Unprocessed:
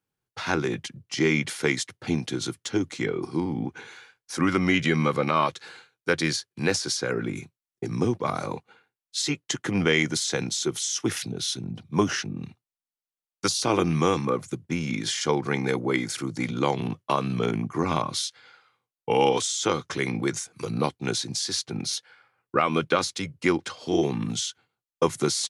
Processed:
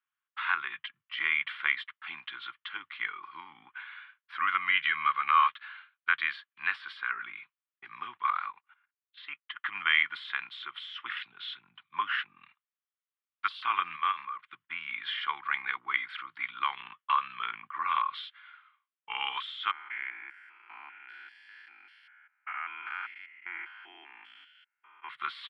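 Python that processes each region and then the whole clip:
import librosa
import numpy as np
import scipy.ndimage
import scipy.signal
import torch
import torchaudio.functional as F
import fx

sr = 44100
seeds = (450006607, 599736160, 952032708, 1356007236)

y = fx.chain(x, sr, fx.level_steps(step_db=14),
    fx.air_absorb(metres=210.0), at=(8.51, 9.56))
y = fx.chain(y, sr, fx.highpass(hz=180.0, slope=6),
    fx.level_steps(step_db=11), at=(13.96, 14.51))
y = fx.chain(y, sr, fx.spec_steps(hold_ms=200),
    fx.highpass(hz=290.0, slope=24),
    fx.fixed_phaser(hz=760.0, stages=8), at=(19.71, 25.09))
y = scipy.signal.sosfilt(scipy.signal.ellip(3, 1.0, 40, [1100.0, 3300.0], 'bandpass', fs=sr, output='sos'), y)
y = fx.high_shelf(y, sr, hz=2400.0, db=-10.0)
y = F.gain(torch.from_numpy(y), 5.0).numpy()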